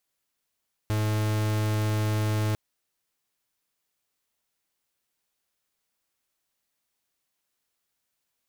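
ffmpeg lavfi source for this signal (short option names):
-f lavfi -i "aevalsrc='0.0531*(2*lt(mod(107*t,1),0.44)-1)':d=1.65:s=44100"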